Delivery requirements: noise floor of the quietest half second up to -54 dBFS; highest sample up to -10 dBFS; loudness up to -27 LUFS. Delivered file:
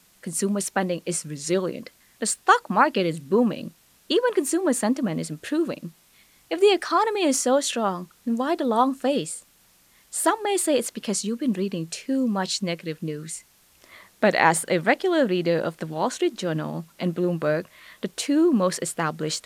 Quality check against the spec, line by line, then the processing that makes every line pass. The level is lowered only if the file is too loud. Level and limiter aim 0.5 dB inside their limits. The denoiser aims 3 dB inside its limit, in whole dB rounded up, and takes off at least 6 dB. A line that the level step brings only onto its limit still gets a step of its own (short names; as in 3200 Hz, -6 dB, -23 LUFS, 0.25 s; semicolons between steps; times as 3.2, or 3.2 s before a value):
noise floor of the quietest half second -59 dBFS: OK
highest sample -3.5 dBFS: fail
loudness -24.0 LUFS: fail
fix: gain -3.5 dB; limiter -10.5 dBFS